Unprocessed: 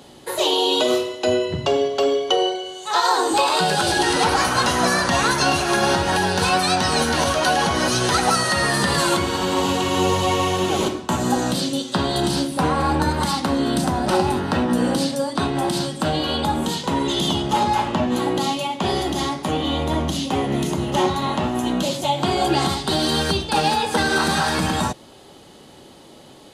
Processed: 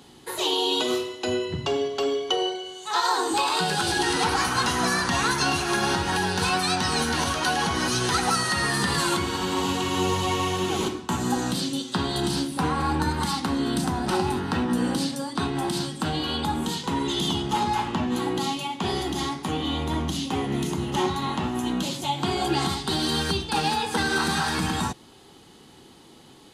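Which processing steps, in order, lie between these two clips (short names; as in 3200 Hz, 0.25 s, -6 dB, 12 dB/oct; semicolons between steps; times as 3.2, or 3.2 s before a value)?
bell 590 Hz -12.5 dB 0.34 oct; gain -4 dB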